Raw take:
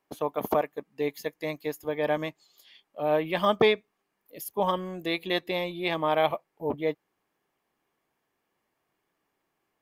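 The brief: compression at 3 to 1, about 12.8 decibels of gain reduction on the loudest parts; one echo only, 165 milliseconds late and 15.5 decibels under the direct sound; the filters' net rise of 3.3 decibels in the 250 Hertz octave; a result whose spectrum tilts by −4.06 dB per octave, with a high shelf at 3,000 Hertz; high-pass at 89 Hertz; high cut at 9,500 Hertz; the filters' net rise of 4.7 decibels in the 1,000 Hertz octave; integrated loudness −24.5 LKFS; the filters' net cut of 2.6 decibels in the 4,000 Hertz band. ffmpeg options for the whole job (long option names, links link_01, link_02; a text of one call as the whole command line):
ffmpeg -i in.wav -af "highpass=89,lowpass=9500,equalizer=frequency=250:width_type=o:gain=4.5,equalizer=frequency=1000:width_type=o:gain=5.5,highshelf=frequency=3000:gain=5,equalizer=frequency=4000:width_type=o:gain=-7,acompressor=threshold=-32dB:ratio=3,aecho=1:1:165:0.168,volume=11dB" out.wav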